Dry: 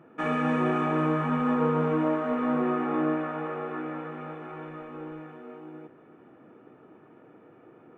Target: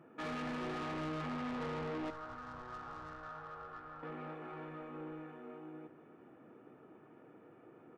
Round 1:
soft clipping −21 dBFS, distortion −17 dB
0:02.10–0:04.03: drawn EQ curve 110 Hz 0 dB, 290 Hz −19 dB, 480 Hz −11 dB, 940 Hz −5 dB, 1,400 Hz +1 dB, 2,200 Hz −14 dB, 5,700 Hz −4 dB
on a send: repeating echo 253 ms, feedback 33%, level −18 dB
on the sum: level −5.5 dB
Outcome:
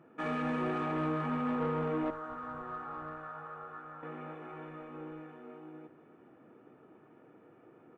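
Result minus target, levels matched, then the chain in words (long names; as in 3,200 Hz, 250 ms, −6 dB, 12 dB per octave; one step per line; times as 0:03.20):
soft clipping: distortion −11 dB
soft clipping −32.5 dBFS, distortion −6 dB
0:02.10–0:04.03: drawn EQ curve 110 Hz 0 dB, 290 Hz −19 dB, 480 Hz −11 dB, 940 Hz −5 dB, 1,400 Hz +1 dB, 2,200 Hz −14 dB, 5,700 Hz −4 dB
on a send: repeating echo 253 ms, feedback 33%, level −18 dB
on the sum: level −5.5 dB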